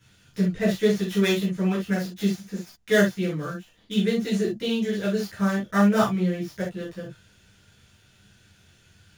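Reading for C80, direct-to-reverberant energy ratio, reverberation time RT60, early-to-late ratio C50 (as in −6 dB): 20.0 dB, −6.5 dB, non-exponential decay, 6.5 dB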